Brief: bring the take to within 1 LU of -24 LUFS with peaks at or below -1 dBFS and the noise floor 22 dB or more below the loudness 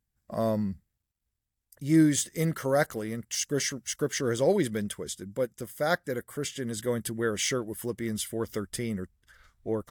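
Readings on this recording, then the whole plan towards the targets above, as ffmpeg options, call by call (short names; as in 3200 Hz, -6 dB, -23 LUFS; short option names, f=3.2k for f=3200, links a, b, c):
loudness -29.5 LUFS; peak -12.0 dBFS; loudness target -24.0 LUFS
-> -af "volume=5.5dB"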